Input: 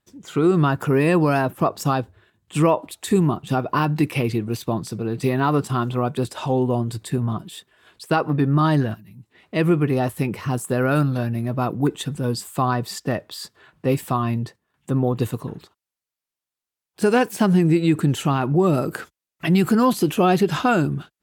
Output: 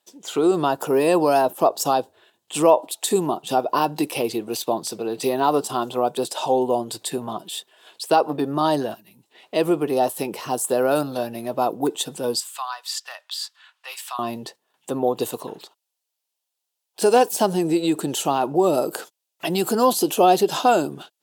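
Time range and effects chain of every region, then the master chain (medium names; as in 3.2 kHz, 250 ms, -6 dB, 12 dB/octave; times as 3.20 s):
12.40–14.19 s: high-pass 1.2 kHz 24 dB/octave + treble shelf 8.5 kHz -11 dB
whole clip: dynamic bell 2.2 kHz, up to -8 dB, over -40 dBFS, Q 0.88; high-pass 540 Hz 12 dB/octave; high-order bell 1.6 kHz -8 dB 1.3 oct; trim +8 dB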